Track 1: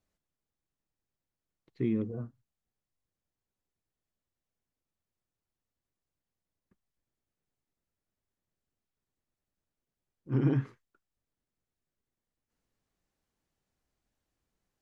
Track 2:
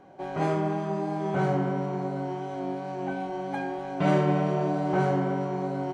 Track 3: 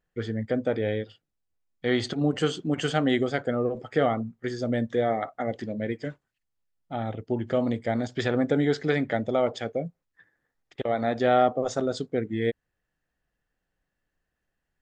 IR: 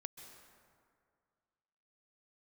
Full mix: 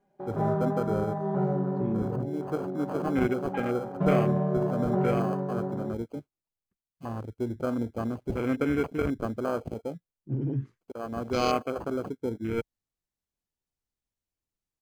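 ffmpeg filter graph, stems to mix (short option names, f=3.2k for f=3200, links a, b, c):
-filter_complex "[0:a]highshelf=f=2.4k:g=10,alimiter=level_in=2dB:limit=-24dB:level=0:latency=1:release=81,volume=-2dB,acontrast=68,volume=-5.5dB,asplit=2[a][b];[1:a]aecho=1:1:4.9:0.97,volume=-6.5dB[c];[2:a]equalizer=f=160:t=o:w=0.67:g=-8,equalizer=f=630:t=o:w=0.67:g=-6,equalizer=f=4k:t=o:w=0.67:g=5,acrusher=samples=24:mix=1:aa=0.000001,lowshelf=f=74:g=-10,adelay=100,volume=-1.5dB[d];[b]apad=whole_len=657897[e];[d][e]sidechaincompress=threshold=-39dB:ratio=6:attack=16:release=931[f];[a][c][f]amix=inputs=3:normalize=0,afwtdn=0.0178,lowshelf=f=150:g=7"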